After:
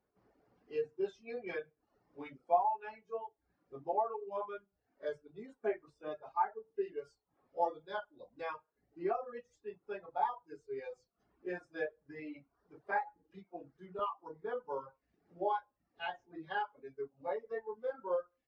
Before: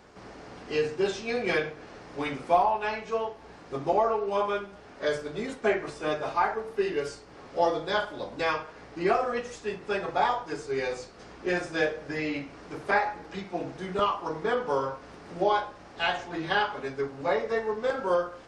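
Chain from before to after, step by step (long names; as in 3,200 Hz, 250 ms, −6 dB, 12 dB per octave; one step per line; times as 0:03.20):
dynamic equaliser 900 Hz, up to +4 dB, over −43 dBFS, Q 7.1
reverb reduction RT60 0.8 s
every bin expanded away from the loudest bin 1.5 to 1
level −8 dB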